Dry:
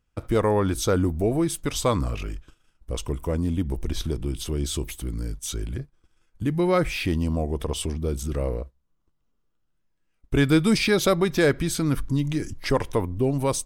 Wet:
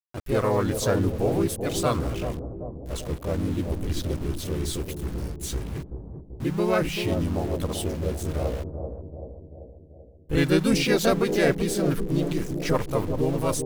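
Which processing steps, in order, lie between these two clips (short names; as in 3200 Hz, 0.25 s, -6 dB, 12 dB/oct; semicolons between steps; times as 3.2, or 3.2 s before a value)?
sample gate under -33.5 dBFS; harmoniser +3 st -2 dB; analogue delay 0.386 s, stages 2048, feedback 57%, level -7 dB; gain -4 dB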